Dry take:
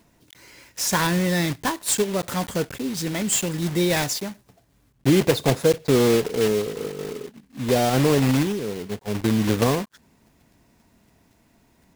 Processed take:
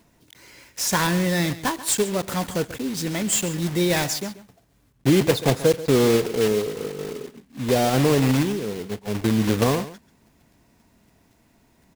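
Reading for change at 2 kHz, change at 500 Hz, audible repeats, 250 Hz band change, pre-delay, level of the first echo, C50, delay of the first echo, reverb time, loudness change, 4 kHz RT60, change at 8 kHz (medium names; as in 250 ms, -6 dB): 0.0 dB, 0.0 dB, 1, 0.0 dB, no reverb, -15.5 dB, no reverb, 136 ms, no reverb, 0.0 dB, no reverb, 0.0 dB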